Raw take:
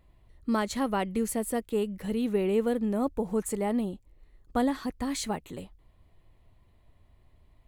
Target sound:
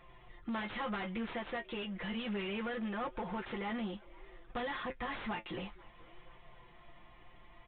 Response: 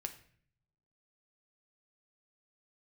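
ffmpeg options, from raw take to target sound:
-filter_complex "[0:a]equalizer=f=320:w=0.34:g=-6.5,bandreject=f=560:w=12,aecho=1:1:5.7:0.98,acrossover=split=1200[s0][s1];[s0]acompressor=threshold=0.0112:ratio=5[s2];[s1]aeval=exprs='(mod(44.7*val(0)+1,2)-1)/44.7':c=same[s3];[s2][s3]amix=inputs=2:normalize=0,flanger=delay=7.4:depth=2.4:regen=53:speed=0.62:shape=triangular,asoftclip=type=hard:threshold=0.0119,asplit=2[s4][s5];[s5]highpass=f=720:p=1,volume=8.91,asoftclip=type=tanh:threshold=0.0119[s6];[s4][s6]amix=inputs=2:normalize=0,lowpass=f=1700:p=1,volume=0.501,asplit=4[s7][s8][s9][s10];[s8]adelay=490,afreqshift=150,volume=0.0708[s11];[s9]adelay=980,afreqshift=300,volume=0.0355[s12];[s10]adelay=1470,afreqshift=450,volume=0.0178[s13];[s7][s11][s12][s13]amix=inputs=4:normalize=0,aresample=8000,aresample=44100,volume=2.24"

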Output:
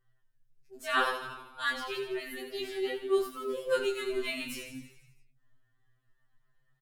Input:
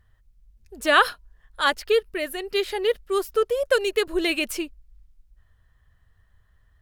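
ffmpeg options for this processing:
-filter_complex "[0:a]asplit=9[s0][s1][s2][s3][s4][s5][s6][s7][s8];[s1]adelay=82,afreqshift=-36,volume=0.398[s9];[s2]adelay=164,afreqshift=-72,volume=0.245[s10];[s3]adelay=246,afreqshift=-108,volume=0.153[s11];[s4]adelay=328,afreqshift=-144,volume=0.0944[s12];[s5]adelay=410,afreqshift=-180,volume=0.0589[s13];[s6]adelay=492,afreqshift=-216,volume=0.0363[s14];[s7]adelay=574,afreqshift=-252,volume=0.0226[s15];[s8]adelay=656,afreqshift=-288,volume=0.014[s16];[s0][s9][s10][s11][s12][s13][s14][s15][s16]amix=inputs=9:normalize=0,flanger=delay=18:depth=6.1:speed=0.34,afftfilt=real='re*2.45*eq(mod(b,6),0)':imag='im*2.45*eq(mod(b,6),0)':win_size=2048:overlap=0.75,volume=0.562"

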